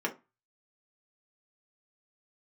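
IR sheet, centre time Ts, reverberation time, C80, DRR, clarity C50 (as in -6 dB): 11 ms, 0.25 s, 23.0 dB, -0.5 dB, 15.0 dB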